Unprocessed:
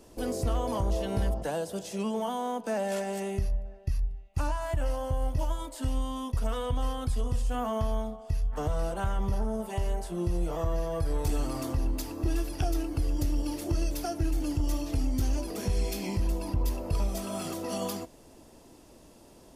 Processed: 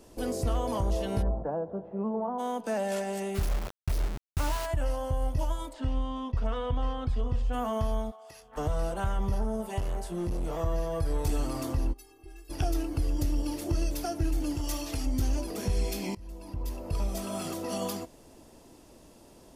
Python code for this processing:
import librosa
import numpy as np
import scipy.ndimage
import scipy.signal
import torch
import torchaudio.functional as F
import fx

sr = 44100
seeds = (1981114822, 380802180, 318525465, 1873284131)

y = fx.lowpass(x, sr, hz=1200.0, slope=24, at=(1.21, 2.38), fade=0.02)
y = fx.quant_dither(y, sr, seeds[0], bits=6, dither='none', at=(3.34, 4.65), fade=0.02)
y = fx.lowpass(y, sr, hz=3300.0, slope=12, at=(5.72, 7.52), fade=0.02)
y = fx.highpass(y, sr, hz=fx.line((8.1, 930.0), (8.56, 280.0)), slope=12, at=(8.1, 8.56), fade=0.02)
y = fx.clip_hard(y, sr, threshold_db=-27.5, at=(9.79, 10.6))
y = fx.stiff_resonator(y, sr, f0_hz=390.0, decay_s=0.25, stiffness=0.008, at=(11.92, 12.49), fade=0.02)
y = fx.tilt_shelf(y, sr, db=-5.5, hz=640.0, at=(14.57, 15.06))
y = fx.edit(y, sr, fx.fade_in_from(start_s=16.15, length_s=1.07, floor_db=-23.0), tone=tone)